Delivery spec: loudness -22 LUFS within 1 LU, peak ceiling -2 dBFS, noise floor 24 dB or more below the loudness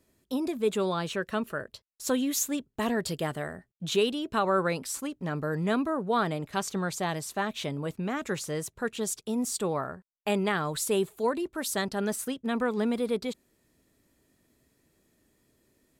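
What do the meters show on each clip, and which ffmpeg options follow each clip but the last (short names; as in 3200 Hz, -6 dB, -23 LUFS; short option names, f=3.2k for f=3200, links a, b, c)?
loudness -30.5 LUFS; peak -15.0 dBFS; loudness target -22.0 LUFS
-> -af "volume=8.5dB"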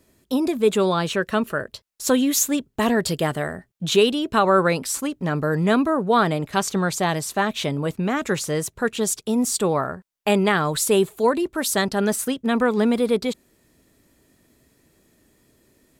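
loudness -22.0 LUFS; peak -6.5 dBFS; noise floor -65 dBFS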